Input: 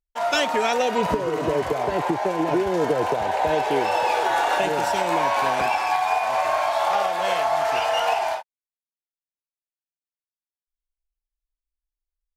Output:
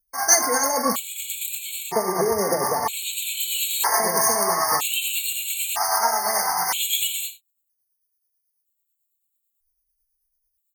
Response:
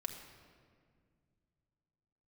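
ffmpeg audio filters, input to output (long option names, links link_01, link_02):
-filter_complex "[0:a]tremolo=f=7.9:d=0.47,acrossover=split=3100[link_01][link_02];[link_02]crystalizer=i=4.5:c=0[link_03];[link_01][link_03]amix=inputs=2:normalize=0,asetrate=50715,aresample=44100,crystalizer=i=1.5:c=0[link_04];[1:a]atrim=start_sample=2205,atrim=end_sample=3969[link_05];[link_04][link_05]afir=irnorm=-1:irlink=0,asplit=2[link_06][link_07];[link_07]acrusher=bits=5:mode=log:mix=0:aa=0.000001,volume=-9dB[link_08];[link_06][link_08]amix=inputs=2:normalize=0,afftfilt=real='re*gt(sin(2*PI*0.52*pts/sr)*(1-2*mod(floor(b*sr/1024/2200),2)),0)':imag='im*gt(sin(2*PI*0.52*pts/sr)*(1-2*mod(floor(b*sr/1024/2200),2)),0)':win_size=1024:overlap=0.75"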